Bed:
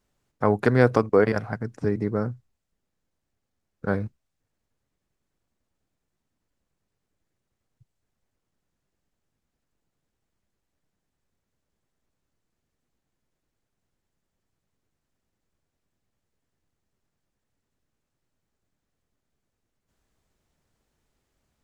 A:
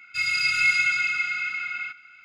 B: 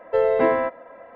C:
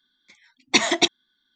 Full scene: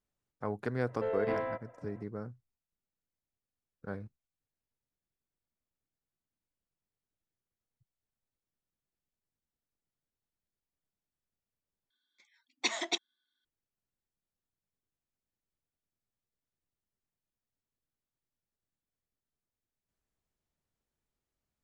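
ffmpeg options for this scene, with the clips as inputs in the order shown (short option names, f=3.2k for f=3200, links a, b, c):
-filter_complex "[0:a]volume=-15dB[a];[2:a]asoftclip=type=tanh:threshold=-12.5dB[b];[3:a]highpass=350[c];[a]asplit=2[d][e];[d]atrim=end=11.904[f];[c]atrim=end=1.55,asetpts=PTS-STARTPTS,volume=-13.5dB[g];[e]atrim=start=13.446[h];[b]atrim=end=1.15,asetpts=PTS-STARTPTS,volume=-13dB,afade=t=in:d=0.004:c=hsin,afade=t=out:st=1.146:d=0.004:c=hsin,adelay=880[i];[f][g]acrossfade=d=0.004:c1=hsin:c2=hsin[j];[j][h]acrossfade=d=0.004:c1=hsin:c2=hsin[k];[k][i]amix=inputs=2:normalize=0"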